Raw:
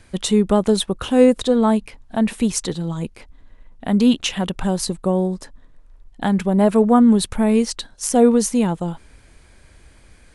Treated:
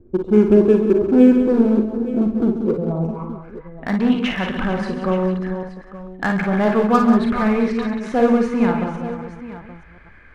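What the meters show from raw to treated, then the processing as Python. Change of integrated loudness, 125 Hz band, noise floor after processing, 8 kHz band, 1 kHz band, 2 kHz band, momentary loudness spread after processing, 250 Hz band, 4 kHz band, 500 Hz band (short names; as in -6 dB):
+0.5 dB, +0.5 dB, -44 dBFS, under -20 dB, +1.0 dB, +6.0 dB, 19 LU, +1.0 dB, -8.0 dB, +1.0 dB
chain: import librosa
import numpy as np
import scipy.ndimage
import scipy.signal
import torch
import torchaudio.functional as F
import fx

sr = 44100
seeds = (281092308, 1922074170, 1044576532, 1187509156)

p1 = fx.reverse_delay(x, sr, ms=256, wet_db=-10)
p2 = fx.peak_eq(p1, sr, hz=1200.0, db=5.5, octaves=0.29)
p3 = fx.filter_sweep_lowpass(p2, sr, from_hz=360.0, to_hz=1900.0, start_s=2.53, end_s=3.62, q=6.6)
p4 = 10.0 ** (-15.5 / 20.0) * (np.abs((p3 / 10.0 ** (-15.5 / 20.0) + 3.0) % 4.0 - 2.0) - 1.0)
p5 = p3 + (p4 * 10.0 ** (-10.5 / 20.0))
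p6 = fx.notch(p5, sr, hz=1900.0, q=6.6)
p7 = p6 + fx.echo_multitap(p6, sr, ms=(43, 56, 136, 184, 448, 874), db=(-8.5, -7.5, -11.5, -9.5, -15.0, -14.5), dry=0)
y = p7 * 10.0 ** (-4.0 / 20.0)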